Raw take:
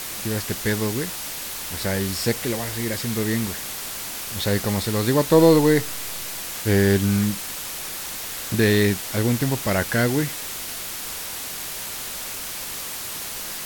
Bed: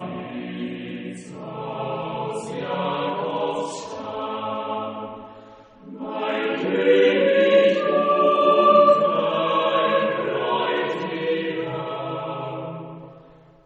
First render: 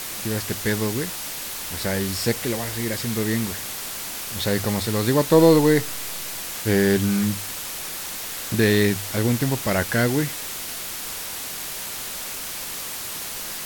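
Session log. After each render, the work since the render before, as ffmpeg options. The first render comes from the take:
-af "bandreject=f=50:t=h:w=4,bandreject=f=100:t=h:w=4"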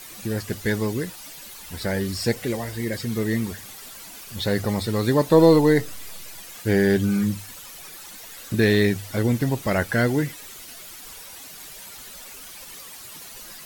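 -af "afftdn=nr=12:nf=-32"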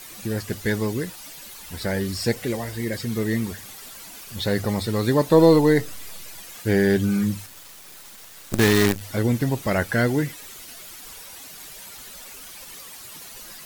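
-filter_complex "[0:a]asettb=1/sr,asplit=3[a][b][c];[a]atrim=end=7.464[d];[b]atrim=start=7.46:end=9.01,asetpts=PTS-STARTPTS,afade=t=in:d=0.004:c=qsin,afade=t=out:st=1.546:d=0.004:c=qsin,acrusher=bits=4:dc=4:mix=0:aa=0.000001[e];[c]atrim=start=9.006[f];[d][e]acrossfade=d=0.004:c1=hsin:c2=qsin[g];[g][f]acrossfade=d=0.004:c1=qsin:c2=hsin"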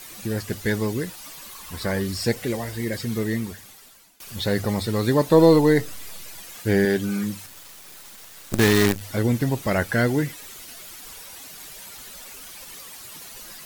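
-filter_complex "[0:a]asettb=1/sr,asplit=3[a][b][c];[a]atrim=end=1.244[d];[b]atrim=start=1.24:end=2.02,asetpts=PTS-STARTPTS,afade=t=in:d=0.004:c=qsin,afade=t=out:st=0.776:d=0.004:c=qsin,equalizer=f=1.1k:w=6.8:g=12[e];[c]atrim=start=2.016[f];[d][e]acrossfade=d=0.004:c1=hsin:c2=qsin[g];[g][f]acrossfade=d=0.004:c1=qsin:c2=hsin,asettb=1/sr,asplit=3[h][i][j];[h]atrim=end=6.854[k];[i]atrim=start=6.85:end=7.45,asetpts=PTS-STARTPTS,afade=t=in:d=0.004:c=qsin,afade=t=out:st=0.596:d=0.004:c=qsin,highpass=f=250:p=1[l];[j]atrim=start=7.446[m];[k][l]acrossfade=d=0.004:c1=hsin:c2=qsin[n];[n][m]acrossfade=d=0.004:c1=qsin:c2=hsin,asplit=2[o][p];[o]atrim=end=4.2,asetpts=PTS-STARTPTS,afade=t=out:st=3.13:d=1.07:silence=0.0749894[q];[p]atrim=start=4.2,asetpts=PTS-STARTPTS,afade=t=in:d=0.004:c=hsin:silence=0.0749894[r];[q][r]concat=n=2:v=0:a=1"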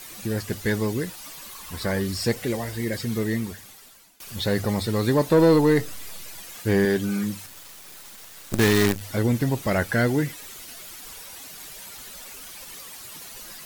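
-af "asoftclip=type=tanh:threshold=-9.5dB"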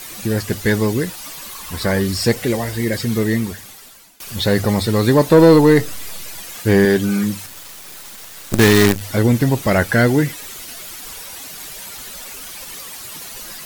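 -af "volume=7.5dB"

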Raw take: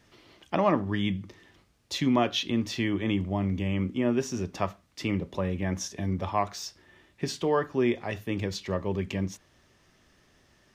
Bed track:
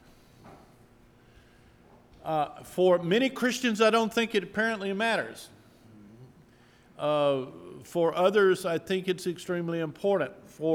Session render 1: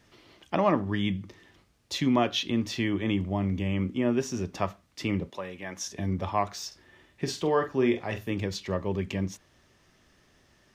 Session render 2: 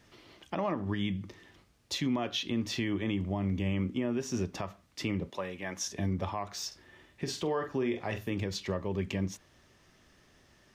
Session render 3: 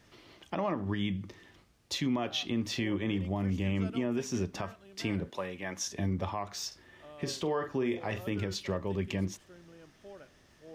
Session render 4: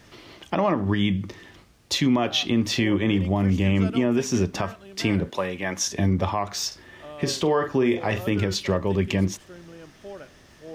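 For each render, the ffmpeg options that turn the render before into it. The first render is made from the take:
-filter_complex "[0:a]asettb=1/sr,asplit=3[a][b][c];[a]atrim=end=5.304[d];[b]atrim=start=5.3:end=5.87,asetpts=PTS-STARTPTS,afade=t=in:d=0.004:c=qsin,afade=t=out:st=0.566:d=0.004:c=qsin,highpass=f=860:p=1[e];[c]atrim=start=5.866[f];[d][e]acrossfade=d=0.004:c1=hsin:c2=qsin[g];[g][f]acrossfade=d=0.004:c1=qsin:c2=hsin,asettb=1/sr,asplit=3[h][i][j];[h]atrim=end=6.674[k];[i]atrim=start=6.67:end=8.33,asetpts=PTS-STARTPTS,afade=t=in:d=0.004:c=qsin,afade=t=out:st=1.656:d=0.004:c=qsin,asplit=2[l][m];[m]adelay=45,volume=-8.5dB[n];[l][n]amix=inputs=2:normalize=0,atrim=end_sample=73206[o];[j]atrim=start=8.326[p];[k][o]acrossfade=d=0.004:c1=hsin:c2=qsin[q];[q][p]acrossfade=d=0.004:c1=qsin:c2=hsin"
-af "alimiter=limit=-22.5dB:level=0:latency=1:release=169"
-filter_complex "[1:a]volume=-24dB[a];[0:a][a]amix=inputs=2:normalize=0"
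-af "volume=10dB"

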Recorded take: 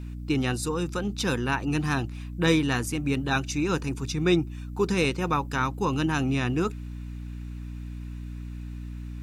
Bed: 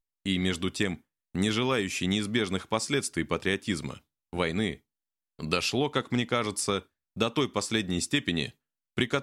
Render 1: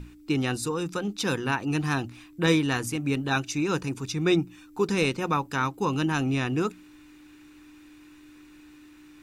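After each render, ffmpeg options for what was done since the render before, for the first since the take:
-af "bandreject=f=60:t=h:w=6,bandreject=f=120:t=h:w=6,bandreject=f=180:t=h:w=6,bandreject=f=240:t=h:w=6"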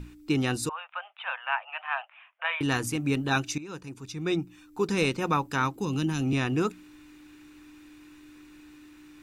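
-filter_complex "[0:a]asettb=1/sr,asplit=3[a][b][c];[a]atrim=end=0.694[d];[b]atrim=start=0.69:end=2.61,asetpts=PTS-STARTPTS,afade=t=in:d=0.004:c=qsin,afade=t=out:st=1.916:d=0.004:c=qsin,asuperpass=centerf=1400:order=20:qfactor=0.54[e];[c]atrim=start=2.606[f];[d][e]acrossfade=d=0.004:c1=hsin:c2=qsin[g];[g][f]acrossfade=d=0.004:c1=qsin:c2=hsin,asettb=1/sr,asplit=3[h][i][j];[h]atrim=end=5.764[k];[i]atrim=start=5.76:end=6.33,asetpts=PTS-STARTPTS,afade=t=in:d=0.004:c=qsin,afade=t=out:st=0.566:d=0.004:c=qsin,acrossover=split=360|3000[l][m][n];[m]acompressor=threshold=-37dB:ratio=6:attack=3.2:release=140:knee=2.83:detection=peak[o];[l][o][n]amix=inputs=3:normalize=0[p];[j]atrim=start=6.326[q];[k][p]acrossfade=d=0.004:c1=hsin:c2=qsin[r];[r][q]acrossfade=d=0.004:c1=qsin:c2=hsin,asplit=2[s][t];[s]atrim=end=3.58,asetpts=PTS-STARTPTS,afade=t=out:st=3.576:d=0.004:c=hsin:silence=0.149624[u];[t]atrim=start=3.58,asetpts=PTS-STARTPTS,afade=t=in:d=1.66:silence=0.149624[v];[u][v]concat=n=2:v=0:a=1"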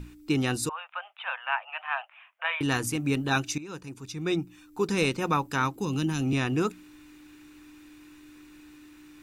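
-af "highshelf=f=8.2k:g=4"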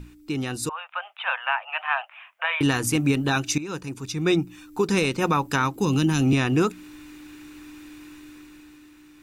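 -af "alimiter=limit=-19dB:level=0:latency=1:release=193,dynaudnorm=f=140:g=13:m=7.5dB"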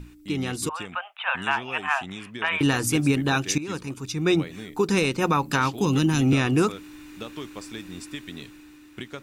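-filter_complex "[1:a]volume=-10.5dB[a];[0:a][a]amix=inputs=2:normalize=0"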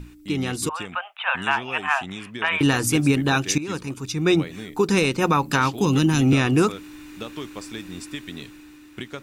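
-af "volume=2.5dB"

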